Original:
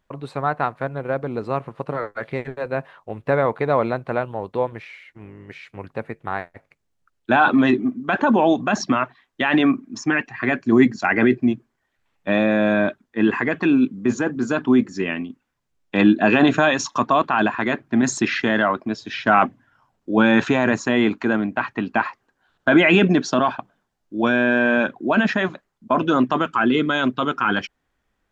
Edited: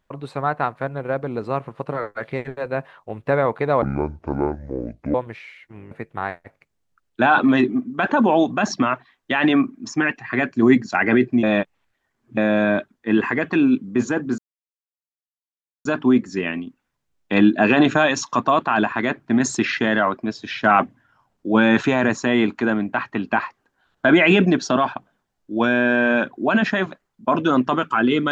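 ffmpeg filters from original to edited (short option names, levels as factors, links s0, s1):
-filter_complex "[0:a]asplit=7[s0][s1][s2][s3][s4][s5][s6];[s0]atrim=end=3.824[s7];[s1]atrim=start=3.82:end=4.6,asetpts=PTS-STARTPTS,asetrate=26019,aresample=44100[s8];[s2]atrim=start=4.596:end=5.372[s9];[s3]atrim=start=6.008:end=11.532[s10];[s4]atrim=start=11.528:end=12.472,asetpts=PTS-STARTPTS,areverse[s11];[s5]atrim=start=12.468:end=14.48,asetpts=PTS-STARTPTS,afade=t=out:st=2.008:d=0.004:c=hsin,apad=pad_dur=1.47[s12];[s6]atrim=start=14.48,asetpts=PTS-STARTPTS,afade=t=in:d=0.004:c=hsin[s13];[s7][s8]acrossfade=d=0.004:c1=hsin:c2=hsin[s14];[s14][s9]acrossfade=d=0.004:c1=hsin:c2=hsin[s15];[s15][s10]acrossfade=d=0.004:c1=hsin:c2=hsin[s16];[s16][s11]acrossfade=d=0.004:c1=hsin:c2=hsin[s17];[s12][s13]concat=n=2:v=0:a=1[s18];[s17][s18]acrossfade=d=0.004:c1=hsin:c2=hsin"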